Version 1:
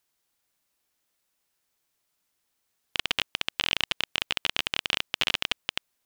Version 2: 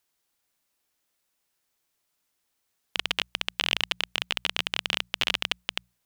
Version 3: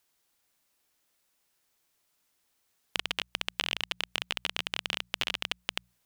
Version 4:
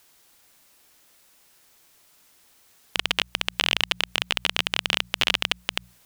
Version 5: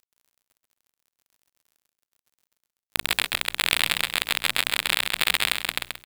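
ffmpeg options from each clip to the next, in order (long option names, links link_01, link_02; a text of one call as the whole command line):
ffmpeg -i in.wav -af "bandreject=frequency=60:width_type=h:width=6,bandreject=frequency=120:width_type=h:width=6,bandreject=frequency=180:width_type=h:width=6" out.wav
ffmpeg -i in.wav -af "acompressor=threshold=-30dB:ratio=4,volume=2.5dB" out.wav
ffmpeg -i in.wav -af "alimiter=level_in=17dB:limit=-1dB:release=50:level=0:latency=1,volume=-1dB" out.wav
ffmpeg -i in.wav -filter_complex "[0:a]aeval=exprs='0.841*(cos(1*acos(clip(val(0)/0.841,-1,1)))-cos(1*PI/2))+0.237*(cos(7*acos(clip(val(0)/0.841,-1,1)))-cos(7*PI/2))':channel_layout=same,acrusher=bits=7:mix=0:aa=0.000001,asplit=2[link_01][link_02];[link_02]aecho=0:1:132|264|396|528|660:0.562|0.219|0.0855|0.0334|0.013[link_03];[link_01][link_03]amix=inputs=2:normalize=0" out.wav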